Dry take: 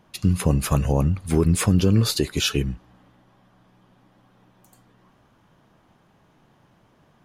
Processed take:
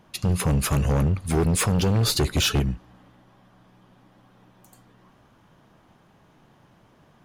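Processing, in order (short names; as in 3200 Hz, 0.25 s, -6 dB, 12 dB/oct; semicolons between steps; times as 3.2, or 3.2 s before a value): 2.07–2.6 low shelf 260 Hz +11 dB; hard clip -19.5 dBFS, distortion -7 dB; gain +2 dB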